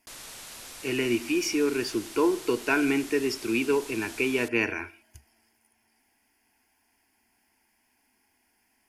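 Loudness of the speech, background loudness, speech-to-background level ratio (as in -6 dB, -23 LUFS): -27.0 LUFS, -41.5 LUFS, 14.5 dB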